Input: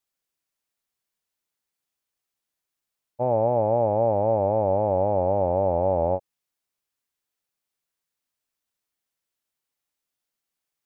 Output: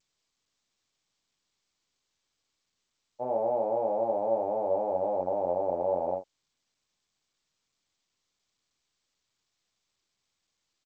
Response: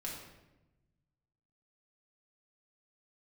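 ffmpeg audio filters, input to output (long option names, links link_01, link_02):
-af "highpass=270,lowpass=2100,aecho=1:1:23|44:0.631|0.501,volume=-8dB" -ar 16000 -c:a g722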